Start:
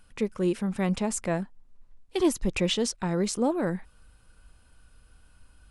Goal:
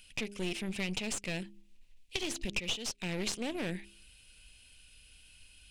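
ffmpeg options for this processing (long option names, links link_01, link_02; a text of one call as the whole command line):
ffmpeg -i in.wav -filter_complex "[0:a]bandreject=frequency=67.45:width_type=h:width=4,bandreject=frequency=134.9:width_type=h:width=4,bandreject=frequency=202.35:width_type=h:width=4,bandreject=frequency=269.8:width_type=h:width=4,bandreject=frequency=337.25:width_type=h:width=4,bandreject=frequency=404.7:width_type=h:width=4,aeval=exprs='0.211*(cos(1*acos(clip(val(0)/0.211,-1,1)))-cos(1*PI/2))+0.0119*(cos(8*acos(clip(val(0)/0.211,-1,1)))-cos(8*PI/2))':channel_layout=same,highshelf=frequency=1800:width_type=q:width=3:gain=13,acompressor=threshold=-23dB:ratio=6,aeval=exprs='clip(val(0),-1,0.02)':channel_layout=same,acrossover=split=9600[link_01][link_02];[link_02]acompressor=threshold=-53dB:ratio=4:attack=1:release=60[link_03];[link_01][link_03]amix=inputs=2:normalize=0,volume=-6.5dB" out.wav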